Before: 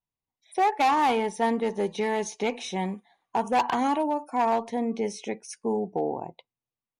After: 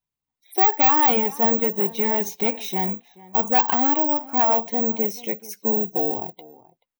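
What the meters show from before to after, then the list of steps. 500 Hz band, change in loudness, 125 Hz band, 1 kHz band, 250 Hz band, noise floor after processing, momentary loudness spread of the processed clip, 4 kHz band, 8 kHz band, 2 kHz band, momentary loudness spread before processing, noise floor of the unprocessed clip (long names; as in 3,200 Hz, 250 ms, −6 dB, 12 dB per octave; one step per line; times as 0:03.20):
+2.0 dB, +7.5 dB, can't be measured, +2.0 dB, +2.5 dB, below −85 dBFS, 11 LU, +2.0 dB, +2.0 dB, +2.0 dB, 11 LU, below −85 dBFS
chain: spectral magnitudes quantised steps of 15 dB
bad sample-rate conversion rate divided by 2×, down filtered, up zero stuff
slap from a distant wall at 74 metres, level −20 dB
level +2.5 dB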